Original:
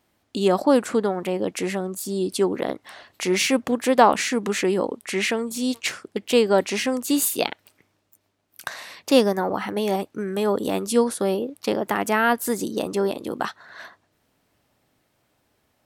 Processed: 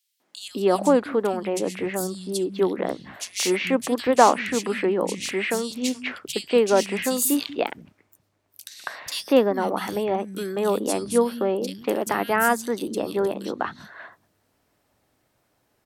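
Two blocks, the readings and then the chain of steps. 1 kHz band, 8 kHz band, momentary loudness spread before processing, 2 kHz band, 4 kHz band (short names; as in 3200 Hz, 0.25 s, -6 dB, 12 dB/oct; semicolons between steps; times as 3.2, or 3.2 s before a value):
0.0 dB, 0.0 dB, 12 LU, -1.5 dB, -2.0 dB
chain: three bands offset in time highs, mids, lows 0.2/0.39 s, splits 180/3000 Hz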